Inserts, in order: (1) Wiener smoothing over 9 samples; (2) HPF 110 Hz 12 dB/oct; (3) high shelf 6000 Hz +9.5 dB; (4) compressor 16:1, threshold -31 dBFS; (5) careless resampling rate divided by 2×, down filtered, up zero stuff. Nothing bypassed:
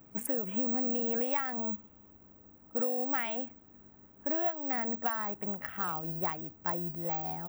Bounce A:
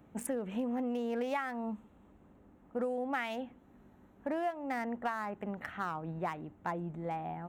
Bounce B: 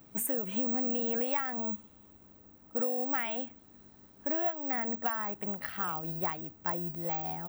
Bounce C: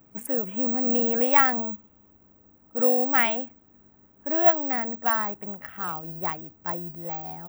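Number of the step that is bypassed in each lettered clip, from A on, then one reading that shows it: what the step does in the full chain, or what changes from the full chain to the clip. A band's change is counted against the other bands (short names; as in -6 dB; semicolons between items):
5, crest factor change -3.0 dB; 1, 4 kHz band +2.5 dB; 4, mean gain reduction 4.5 dB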